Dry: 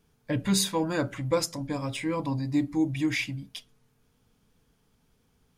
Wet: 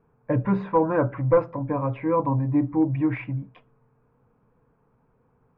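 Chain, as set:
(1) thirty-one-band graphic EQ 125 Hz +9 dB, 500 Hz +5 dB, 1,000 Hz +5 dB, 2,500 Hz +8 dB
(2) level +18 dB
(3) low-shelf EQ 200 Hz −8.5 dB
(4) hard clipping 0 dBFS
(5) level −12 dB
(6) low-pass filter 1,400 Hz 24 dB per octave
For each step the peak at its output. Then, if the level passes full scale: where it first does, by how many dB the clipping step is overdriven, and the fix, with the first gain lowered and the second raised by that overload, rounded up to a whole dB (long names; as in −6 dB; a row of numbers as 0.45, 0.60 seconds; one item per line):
−9.5, +8.5, +7.5, 0.0, −12.0, −10.5 dBFS
step 2, 7.5 dB
step 2 +10 dB, step 5 −4 dB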